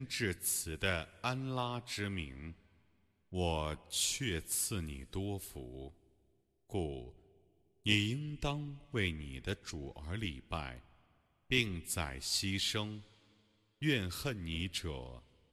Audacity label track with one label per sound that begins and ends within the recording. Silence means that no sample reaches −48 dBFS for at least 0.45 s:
3.320000	5.890000	sound
6.700000	7.100000	sound
7.860000	10.790000	sound
11.500000	13.020000	sound